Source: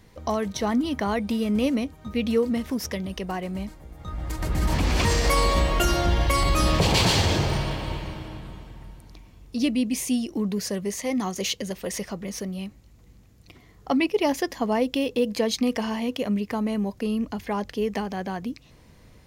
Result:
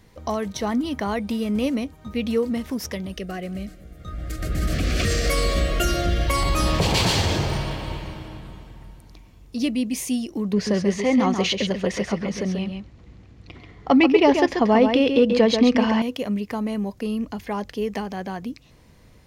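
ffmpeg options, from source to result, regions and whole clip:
ffmpeg -i in.wav -filter_complex "[0:a]asettb=1/sr,asplit=3[link_01][link_02][link_03];[link_01]atrim=end=3.134[link_04];[link_02]atrim=start=3.13:end=6.28,asetpts=PTS-STARTPTS,afade=type=in:duration=0.004:curve=qsin,afade=type=out:start_time=3.146:duration=0.004:curve=qsin,asuperstop=centerf=920:order=8:qfactor=2.2,aecho=1:1:175|350|525|700:0.0794|0.0429|0.0232|0.0125,atrim=end_sample=138915[link_05];[link_03]atrim=start=6.276[link_06];[link_04][link_05]acrossfade=duration=0.004:curve1=hsin:curve2=qsin[link_07];[link_07][link_06]acrossfade=duration=0.004:curve1=qsin:curve2=hsin,asettb=1/sr,asplit=3[link_08][link_09][link_10];[link_08]atrim=end=10.534[link_11];[link_09]atrim=start=10.53:end=16.02,asetpts=PTS-STARTPTS,afade=type=in:duration=0.004:curve=qsin,afade=type=out:start_time=5.486:duration=0.004:curve=qsin,lowpass=3700,acontrast=79,aecho=1:1:136:0.473,atrim=end_sample=242109[link_12];[link_10]atrim=start=16.016[link_13];[link_11][link_12]acrossfade=duration=0.004:curve1=hsin:curve2=qsin[link_14];[link_14][link_13]acrossfade=duration=0.004:curve1=qsin:curve2=hsin" out.wav

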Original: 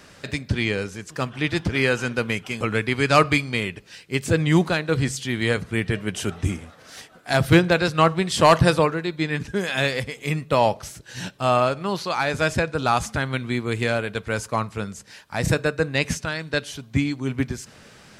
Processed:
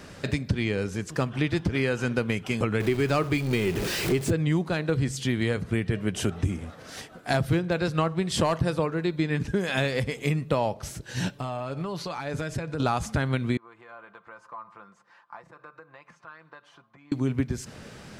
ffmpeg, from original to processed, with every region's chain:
ffmpeg -i in.wav -filter_complex "[0:a]asettb=1/sr,asplit=3[link_01][link_02][link_03];[link_01]atrim=end=2.804[link_04];[link_02]atrim=start=2.8:end=4.31,asetpts=PTS-STARTPTS,afade=type=in:duration=0.004:curve=qsin,afade=type=out:start_time=1.506:duration=0.004:curve=qsin,aeval=exprs='val(0)+0.5*0.0531*sgn(val(0))':channel_layout=same,equalizer=frequency=370:width_type=o:width=0.27:gain=9.5[link_05];[link_03]atrim=start=4.306[link_06];[link_04][link_05]acrossfade=duration=0.004:curve1=hsin:curve2=qsin[link_07];[link_07][link_06]acrossfade=duration=0.004:curve1=qsin:curve2=hsin,asettb=1/sr,asplit=3[link_08][link_09][link_10];[link_08]atrim=end=11.304[link_11];[link_09]atrim=start=11.3:end=12.8,asetpts=PTS-STARTPTS,afade=type=in:duration=0.004:curve=qsin,afade=type=out:start_time=1.496:duration=0.004:curve=qsin,acompressor=threshold=-34dB:ratio=5:attack=3.2:release=140:knee=1:detection=peak,aecho=1:1:6.9:0.39,atrim=end_sample=66150[link_12];[link_10]atrim=start=12.796[link_13];[link_11][link_12]acrossfade=duration=0.004:curve1=hsin:curve2=qsin[link_14];[link_14][link_13]acrossfade=duration=0.004:curve1=qsin:curve2=hsin,asettb=1/sr,asplit=3[link_15][link_16][link_17];[link_15]atrim=end=13.574[link_18];[link_16]atrim=start=13.57:end=17.12,asetpts=PTS-STARTPTS,afade=type=in:duration=0.004:curve=qsin,afade=type=out:start_time=3.546:duration=0.004:curve=qsin,aecho=1:1:5.8:0.56,atrim=end_sample=156555,acompressor=threshold=-30dB:ratio=12:attack=3.2:release=140:knee=1:detection=peak,bandpass=frequency=1100:width_type=q:width=4.3[link_19];[link_17]atrim=start=17.116[link_20];[link_18][link_19]acrossfade=duration=0.004:curve1=hsin:curve2=qsin[link_21];[link_21][link_20]acrossfade=duration=0.004:curve1=qsin:curve2=hsin,tiltshelf=frequency=750:gain=3.5,acompressor=threshold=-25dB:ratio=6,volume=3dB" out.wav

